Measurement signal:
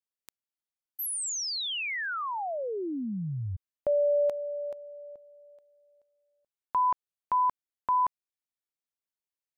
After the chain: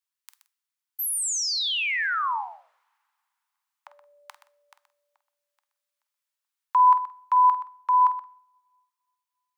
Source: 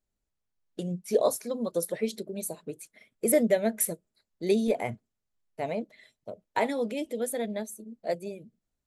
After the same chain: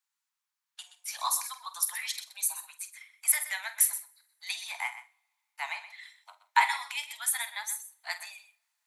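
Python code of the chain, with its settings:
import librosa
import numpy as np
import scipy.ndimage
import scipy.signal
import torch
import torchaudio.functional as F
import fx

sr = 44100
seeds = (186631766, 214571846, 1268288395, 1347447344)

p1 = scipy.signal.sosfilt(scipy.signal.butter(12, 870.0, 'highpass', fs=sr, output='sos'), x)
p2 = fx.rider(p1, sr, range_db=4, speed_s=2.0)
p3 = fx.doubler(p2, sr, ms=48.0, db=-12.5)
p4 = p3 + fx.echo_single(p3, sr, ms=125, db=-13.0, dry=0)
p5 = fx.rev_double_slope(p4, sr, seeds[0], early_s=0.57, late_s=2.8, knee_db=-27, drr_db=17.0)
y = p5 * 10.0 ** (5.5 / 20.0)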